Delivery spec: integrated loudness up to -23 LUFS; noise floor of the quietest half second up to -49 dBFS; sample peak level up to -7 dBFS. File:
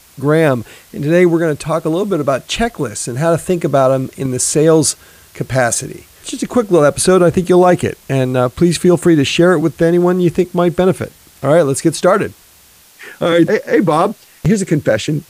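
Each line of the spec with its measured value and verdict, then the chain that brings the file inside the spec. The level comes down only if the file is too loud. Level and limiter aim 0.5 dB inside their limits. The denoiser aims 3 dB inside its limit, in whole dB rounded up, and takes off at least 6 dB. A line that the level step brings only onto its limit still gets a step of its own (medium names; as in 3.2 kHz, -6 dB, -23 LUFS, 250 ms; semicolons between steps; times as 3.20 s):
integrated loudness -14.0 LUFS: fail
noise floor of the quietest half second -46 dBFS: fail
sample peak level -1.5 dBFS: fail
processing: trim -9.5 dB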